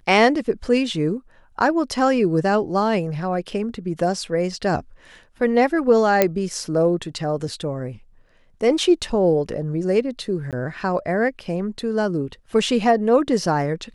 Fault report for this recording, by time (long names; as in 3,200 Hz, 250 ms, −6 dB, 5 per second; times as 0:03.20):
0:06.22: click −2 dBFS
0:10.51–0:10.53: drop-out 17 ms